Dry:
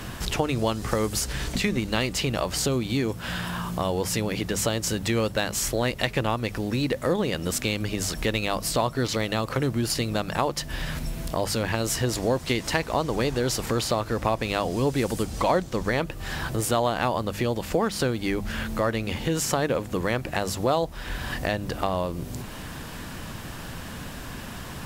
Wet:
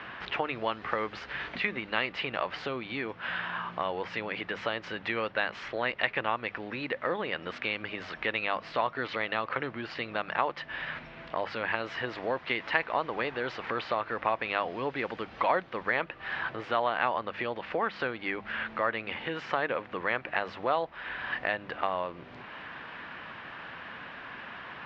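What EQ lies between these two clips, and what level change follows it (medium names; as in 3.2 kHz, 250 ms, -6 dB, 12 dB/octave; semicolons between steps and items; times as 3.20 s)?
band-pass filter 2.1 kHz, Q 0.9; Bessel low-pass 2.8 kHz, order 2; distance through air 240 m; +5.0 dB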